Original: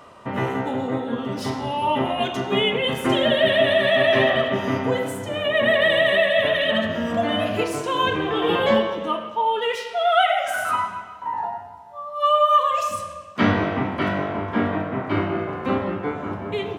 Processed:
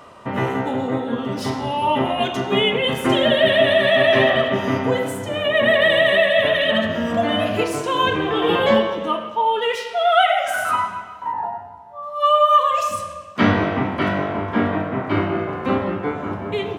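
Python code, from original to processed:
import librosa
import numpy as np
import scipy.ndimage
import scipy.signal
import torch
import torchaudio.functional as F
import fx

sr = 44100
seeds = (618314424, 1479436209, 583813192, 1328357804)

y = fx.high_shelf(x, sr, hz=2700.0, db=-10.5, at=(11.32, 12.03))
y = y * 10.0 ** (2.5 / 20.0)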